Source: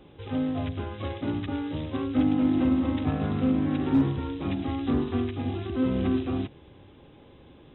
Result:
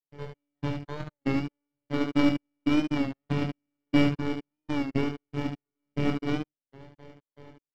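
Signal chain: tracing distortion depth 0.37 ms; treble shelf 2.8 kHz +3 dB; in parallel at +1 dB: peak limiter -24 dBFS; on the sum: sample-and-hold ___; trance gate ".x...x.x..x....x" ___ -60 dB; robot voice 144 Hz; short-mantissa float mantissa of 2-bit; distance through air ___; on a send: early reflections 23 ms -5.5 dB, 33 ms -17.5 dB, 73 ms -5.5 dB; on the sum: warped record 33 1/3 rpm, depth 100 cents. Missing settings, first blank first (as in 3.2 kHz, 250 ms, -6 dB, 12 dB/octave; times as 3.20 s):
17×, 118 bpm, 210 m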